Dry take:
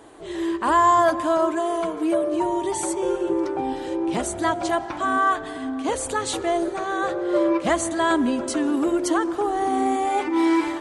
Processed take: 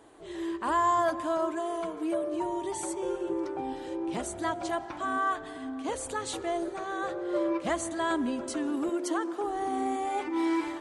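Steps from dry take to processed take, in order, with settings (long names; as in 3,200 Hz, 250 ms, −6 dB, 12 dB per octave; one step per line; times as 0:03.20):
0:08.89–0:09.44: high-pass filter 190 Hz 24 dB per octave
level −8.5 dB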